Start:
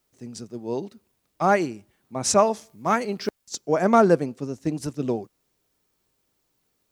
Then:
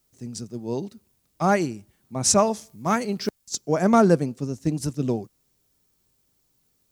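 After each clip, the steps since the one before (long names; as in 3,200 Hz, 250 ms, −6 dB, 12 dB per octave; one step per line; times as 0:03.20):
bass and treble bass +8 dB, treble +7 dB
level −2 dB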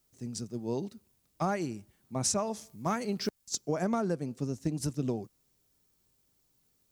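downward compressor 10 to 1, threshold −23 dBFS, peak gain reduction 12 dB
level −3.5 dB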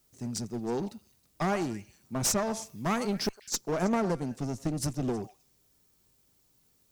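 echo through a band-pass that steps 106 ms, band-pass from 890 Hz, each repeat 1.4 octaves, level −12 dB
asymmetric clip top −34 dBFS
level +4.5 dB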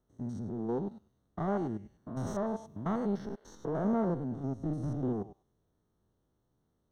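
spectrum averaged block by block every 100 ms
moving average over 18 samples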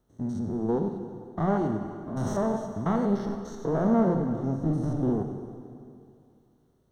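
dense smooth reverb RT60 2.4 s, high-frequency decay 0.9×, DRR 5.5 dB
level +6 dB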